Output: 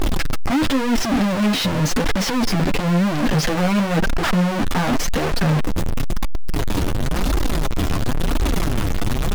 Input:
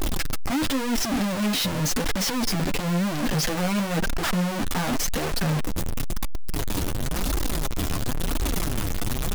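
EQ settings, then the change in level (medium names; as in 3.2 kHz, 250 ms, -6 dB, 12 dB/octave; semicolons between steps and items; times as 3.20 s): treble shelf 5.5 kHz -11 dB; +6.5 dB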